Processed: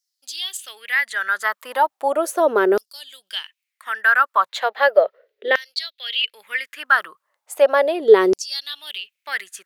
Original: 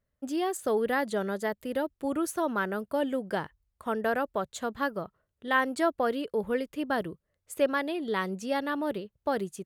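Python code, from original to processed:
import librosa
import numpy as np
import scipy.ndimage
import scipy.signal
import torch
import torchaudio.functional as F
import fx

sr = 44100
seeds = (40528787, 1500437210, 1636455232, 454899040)

y = fx.graphic_eq_10(x, sr, hz=(125, 250, 500, 1000, 2000, 4000, 8000), db=(-9, -10, 10, -9, 11, 7, -11), at=(4.49, 6.33))
y = fx.rider(y, sr, range_db=4, speed_s=0.5)
y = fx.filter_lfo_highpass(y, sr, shape='saw_down', hz=0.36, low_hz=350.0, high_hz=5500.0, q=5.3)
y = y * 10.0 ** (6.5 / 20.0)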